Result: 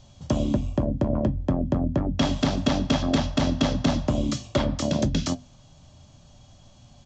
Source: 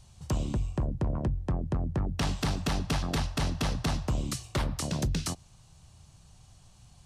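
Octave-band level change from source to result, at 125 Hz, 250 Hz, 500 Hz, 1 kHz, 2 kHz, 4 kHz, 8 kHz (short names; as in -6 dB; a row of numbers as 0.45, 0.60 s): +4.0, +10.5, +10.5, +5.0, +3.5, +6.0, +1.0 dB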